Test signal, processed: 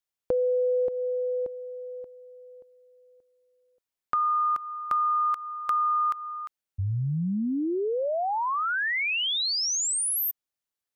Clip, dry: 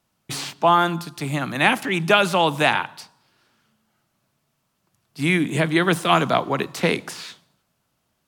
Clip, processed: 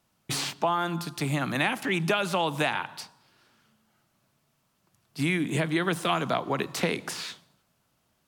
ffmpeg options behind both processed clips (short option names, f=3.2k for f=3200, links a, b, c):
-af "acompressor=threshold=-24dB:ratio=4"